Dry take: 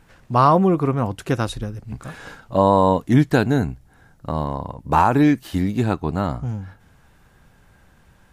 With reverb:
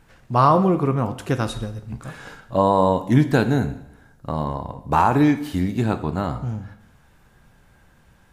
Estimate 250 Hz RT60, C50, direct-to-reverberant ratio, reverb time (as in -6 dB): 0.80 s, 13.0 dB, 9.0 dB, 0.80 s